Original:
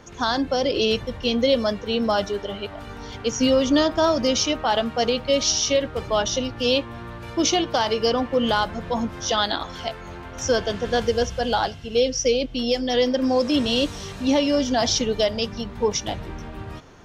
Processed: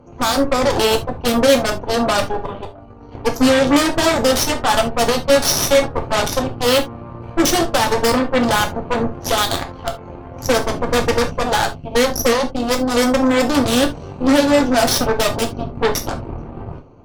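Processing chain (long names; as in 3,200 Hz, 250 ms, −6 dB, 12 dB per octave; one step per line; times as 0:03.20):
adaptive Wiener filter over 25 samples
0:02.65–0:03.12: downward expander −31 dBFS
harmonic generator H 8 −10 dB, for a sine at −10.5 dBFS
reverb whose tail is shaped and stops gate 100 ms falling, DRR 4 dB
level +2.5 dB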